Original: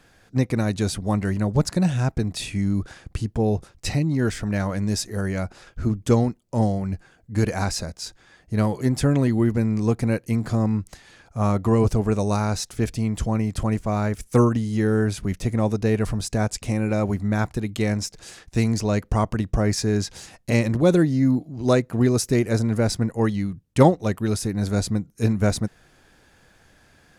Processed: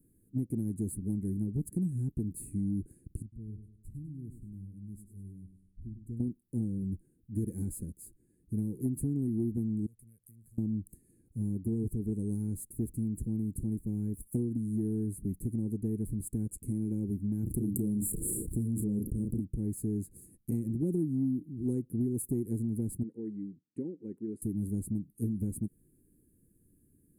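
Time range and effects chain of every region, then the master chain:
3.22–6.2 passive tone stack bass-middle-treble 10-0-1 + feedback echo 0.101 s, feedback 44%, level -9.5 dB
9.86–10.58 passive tone stack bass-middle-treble 10-0-10 + compressor 10:1, threshold -45 dBFS + Doppler distortion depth 0.44 ms
17.43–19.4 brick-wall FIR band-stop 690–7000 Hz + doubler 34 ms -7.5 dB + fast leveller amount 70%
23.03–24.42 BPF 320–2600 Hz + compressor 3:1, threshold -24 dBFS
whole clip: inverse Chebyshev band-stop 620–6000 Hz, stop band 40 dB; compressor, threshold -22 dBFS; low shelf 210 Hz -10.5 dB

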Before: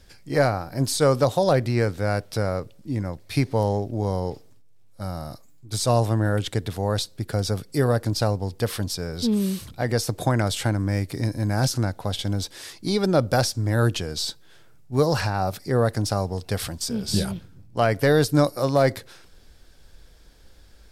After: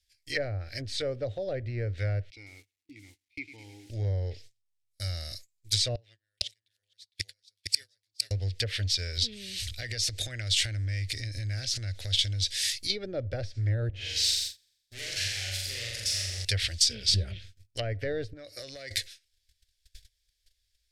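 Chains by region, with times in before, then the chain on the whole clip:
2.3–3.9 vowel filter u + lo-fi delay 0.105 s, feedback 55%, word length 9-bit, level -12 dB
5.95–8.31 weighting filter D + flipped gate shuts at -18 dBFS, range -29 dB + echo 0.458 s -4 dB
9.17–12.9 compressor 4:1, threshold -29 dBFS + low shelf 190 Hz +5.5 dB
13.89–16.45 tube stage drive 37 dB, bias 0.6 + flutter echo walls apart 7.3 m, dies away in 1.2 s
18.33–18.91 HPF 110 Hz 6 dB/oct + high shelf 2100 Hz -9.5 dB + compressor 12:1, threshold -28 dBFS
whole clip: treble ducked by the level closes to 720 Hz, closed at -18 dBFS; gate -43 dBFS, range -28 dB; EQ curve 100 Hz 0 dB, 150 Hz -23 dB, 590 Hz -10 dB, 980 Hz -29 dB, 1900 Hz +7 dB, 3800 Hz +12 dB

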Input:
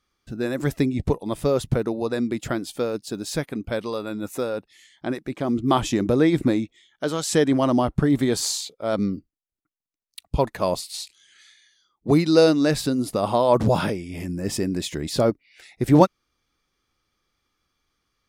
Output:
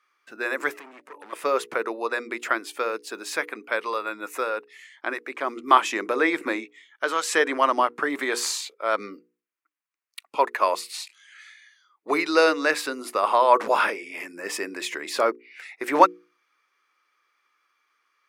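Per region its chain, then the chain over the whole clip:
0.7–1.33 de-hum 290.4 Hz, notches 3 + compressor 10:1, threshold -31 dBFS + hard clip -36.5 dBFS
whole clip: HPF 360 Hz 24 dB/oct; band shelf 1600 Hz +11 dB; notches 60/120/180/240/300/360/420/480 Hz; gain -2 dB

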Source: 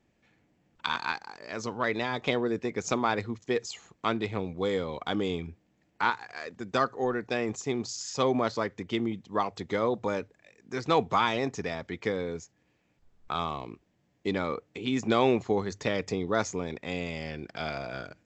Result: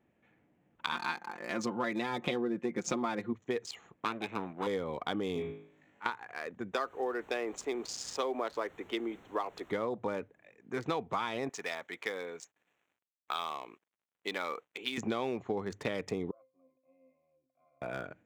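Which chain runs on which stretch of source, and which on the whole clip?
0.92–3.33 bell 250 Hz +10.5 dB 0.46 oct + comb 5.7 ms, depth 83% + mismatched tape noise reduction encoder only
4.05–4.67 minimum comb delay 0.8 ms + Bessel high-pass 260 Hz
5.34–6.06 auto swell 0.317 s + flutter echo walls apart 3.3 m, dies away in 0.48 s + mismatched tape noise reduction encoder only
6.73–9.69 HPF 310 Hz 24 dB/oct + added noise pink -54 dBFS
11.49–14.98 HPF 640 Hz 6 dB/oct + tilt +2 dB/oct + companded quantiser 6-bit
16.31–17.82 vowel filter a + bell 930 Hz -6 dB 2.2 oct + octave resonator C, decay 0.33 s
whole clip: Wiener smoothing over 9 samples; HPF 140 Hz 6 dB/oct; compressor 6:1, threshold -30 dBFS

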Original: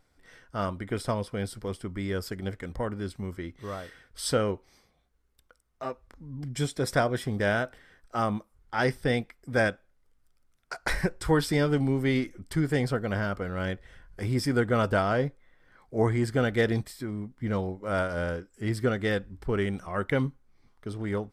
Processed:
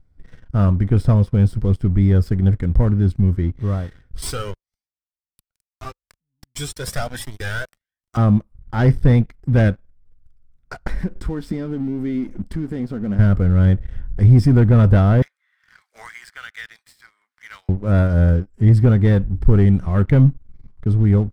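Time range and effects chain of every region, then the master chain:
4.22–8.17 differentiator + sample leveller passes 5 + cascading flanger rising 1.3 Hz
10.87–13.19 compressor 3:1, threshold -38 dBFS + resonant low shelf 170 Hz -6.5 dB, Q 3
15.22–17.69 HPF 1400 Hz 24 dB/oct + three-band squash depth 70%
whole clip: tilt -2 dB/oct; sample leveller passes 2; tone controls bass +13 dB, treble -1 dB; gain -4 dB

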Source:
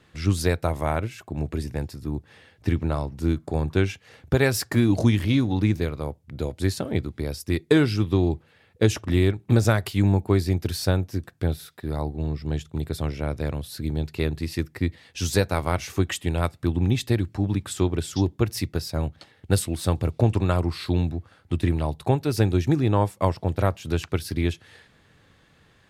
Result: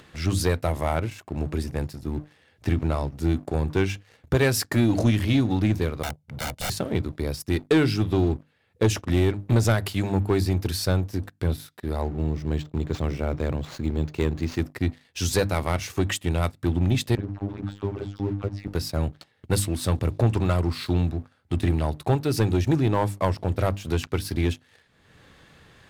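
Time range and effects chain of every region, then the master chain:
6.03–6.7 HPF 87 Hz + wrapped overs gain 27 dB + comb 1.4 ms, depth 69%
12.01–14.6 bell 260 Hz +2 dB 1.8 oct + decimation joined by straight lines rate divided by 4×
17.15–18.68 tape spacing loss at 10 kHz 39 dB + dispersion lows, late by 41 ms, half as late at 1000 Hz + robotiser 100 Hz
whole clip: notches 50/100/150/200/250/300 Hz; sample leveller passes 2; upward compressor, threshold -32 dBFS; gain -6 dB

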